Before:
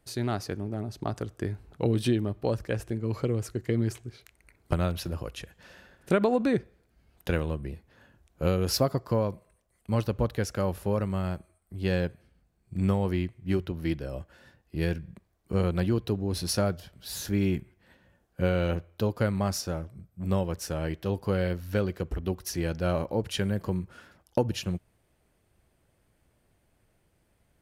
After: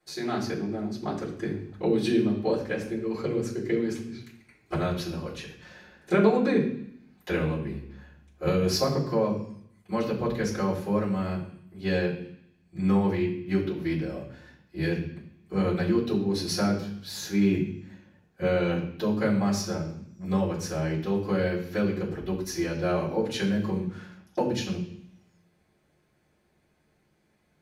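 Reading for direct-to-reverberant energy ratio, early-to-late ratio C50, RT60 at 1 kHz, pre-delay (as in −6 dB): −13.5 dB, 7.0 dB, 0.70 s, 3 ms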